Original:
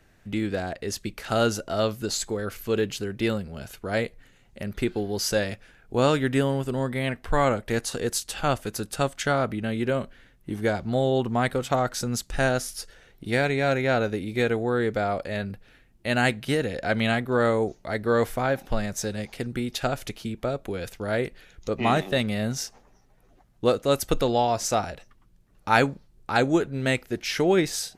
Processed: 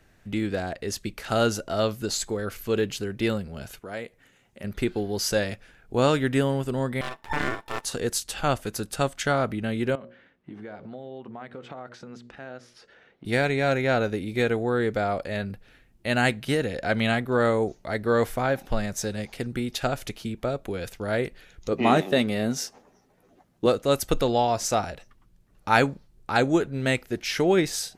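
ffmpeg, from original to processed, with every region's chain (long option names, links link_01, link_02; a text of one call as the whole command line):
ffmpeg -i in.wav -filter_complex "[0:a]asettb=1/sr,asplit=3[link_01][link_02][link_03];[link_01]atrim=end=3.794[link_04];[link_02]atrim=start=3.79:end=4.64,asetpts=PTS-STARTPTS,afade=type=in:duration=0.004:curve=qsin,afade=type=out:start_time=0.846:duration=0.004:curve=qsin,highpass=frequency=200:poles=1,equalizer=frequency=4300:width_type=o:width=0.3:gain=-5.5,acompressor=threshold=-44dB:ratio=1.5:attack=3.2:release=140:knee=1:detection=peak[link_05];[link_03]atrim=start=4.636[link_06];[link_04][link_05]acrossfade=duration=0.004:curve1=hsin:curve2=qsin[link_07];[link_07][link_06]acrossfade=duration=0.004:curve1=qsin:curve2=hsin,asettb=1/sr,asplit=3[link_08][link_09][link_10];[link_08]atrim=end=7.014[link_11];[link_09]atrim=start=7.01:end=7.85,asetpts=PTS-STARTPTS,afade=type=in:duration=0.004:curve=qsin,afade=type=out:start_time=0.836:duration=0.004:curve=qsin,aeval=exprs='val(0)*sin(2*PI*890*n/s)':channel_layout=same,aeval=exprs='max(val(0),0)':channel_layout=same[link_12];[link_10]atrim=start=7.846[link_13];[link_11][link_12]acrossfade=duration=0.004:curve1=hsin:curve2=qsin[link_14];[link_14][link_13]acrossfade=duration=0.004:curve1=qsin:curve2=hsin,asettb=1/sr,asplit=3[link_15][link_16][link_17];[link_15]atrim=end=9.954[link_18];[link_16]atrim=start=9.95:end=13.25,asetpts=PTS-STARTPTS,afade=type=in:duration=0.004:curve=qsin,afade=type=out:start_time=3.296:duration=0.004:curve=qsin,bandreject=frequency=60:width_type=h:width=6,bandreject=frequency=120:width_type=h:width=6,bandreject=frequency=180:width_type=h:width=6,bandreject=frequency=240:width_type=h:width=6,bandreject=frequency=300:width_type=h:width=6,bandreject=frequency=360:width_type=h:width=6,bandreject=frequency=420:width_type=h:width=6,bandreject=frequency=480:width_type=h:width=6,bandreject=frequency=540:width_type=h:width=6,bandreject=frequency=600:width_type=h:width=6,acompressor=threshold=-34dB:ratio=16:attack=3.2:release=140:knee=1:detection=peak,highpass=160,lowpass=2700[link_19];[link_17]atrim=start=13.246[link_20];[link_18][link_19]acrossfade=duration=0.004:curve1=hsin:curve2=qsin[link_21];[link_21][link_20]acrossfade=duration=0.004:curve1=qsin:curve2=hsin,asettb=1/sr,asplit=3[link_22][link_23][link_24];[link_22]atrim=end=21.724[link_25];[link_23]atrim=start=21.72:end=23.66,asetpts=PTS-STARTPTS,afade=type=in:duration=0.004:curve=qsin,afade=type=out:start_time=1.936:duration=0.004:curve=qsin,highpass=frequency=150:poles=1,equalizer=frequency=320:width=0.68:gain=5.5,asplit=2[link_26][link_27];[link_27]adelay=12,volume=-12dB[link_28];[link_26][link_28]amix=inputs=2:normalize=0,atrim=end_sample=85554[link_29];[link_24]atrim=start=23.656[link_30];[link_25][link_29]acrossfade=duration=0.004:curve1=hsin:curve2=qsin[link_31];[link_31][link_30]acrossfade=duration=0.004:curve1=qsin:curve2=hsin" out.wav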